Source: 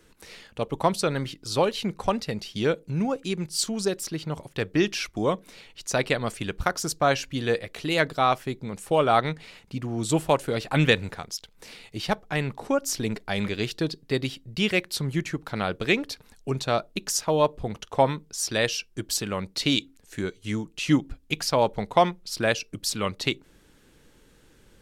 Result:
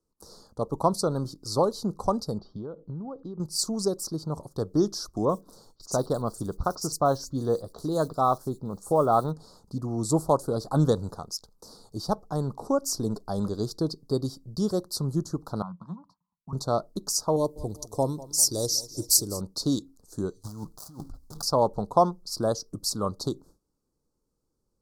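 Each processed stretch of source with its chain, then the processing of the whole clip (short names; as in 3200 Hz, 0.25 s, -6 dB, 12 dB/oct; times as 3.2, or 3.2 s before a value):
2.38–3.4 LPF 3000 Hz 24 dB/oct + compressor 16:1, threshold -32 dBFS
5.25–9.31 block floating point 7-bit + bands offset in time lows, highs 40 ms, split 4800 Hz
15.62–16.53 double band-pass 420 Hz, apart 2.5 oct + three-band squash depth 40%
17.36–19.41 EQ curve 120 Hz 0 dB, 210 Hz -6 dB, 310 Hz +2 dB, 1700 Hz -16 dB, 4500 Hz +5 dB, 12000 Hz +13 dB + feedback echo 0.198 s, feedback 58%, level -18.5 dB
20.43–21.43 switching dead time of 0.19 ms + bell 320 Hz -9.5 dB 1.5 oct + negative-ratio compressor -39 dBFS
whole clip: Chebyshev band-stop 1200–4600 Hz, order 3; gate with hold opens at -44 dBFS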